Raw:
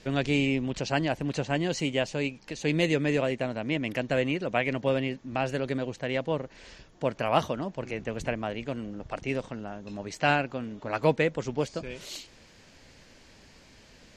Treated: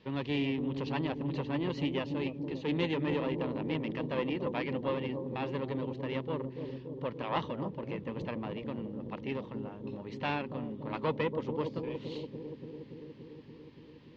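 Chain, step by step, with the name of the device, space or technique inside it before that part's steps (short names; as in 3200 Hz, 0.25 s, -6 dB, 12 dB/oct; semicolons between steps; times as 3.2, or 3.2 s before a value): analogue delay pedal into a guitar amplifier (analogue delay 0.286 s, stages 1024, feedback 79%, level -6.5 dB; tube stage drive 19 dB, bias 0.75; speaker cabinet 78–3600 Hz, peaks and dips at 680 Hz -10 dB, 970 Hz +5 dB, 1500 Hz -9 dB, 2300 Hz -5 dB)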